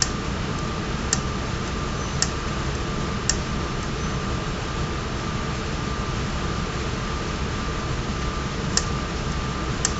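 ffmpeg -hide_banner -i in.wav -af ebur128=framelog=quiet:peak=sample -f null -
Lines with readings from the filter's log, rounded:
Integrated loudness:
  I:         -26.3 LUFS
  Threshold: -36.3 LUFS
Loudness range:
  LRA:         1.5 LU
  Threshold: -46.5 LUFS
  LRA low:   -27.1 LUFS
  LRA high:  -25.6 LUFS
Sample peak:
  Peak:       -1.4 dBFS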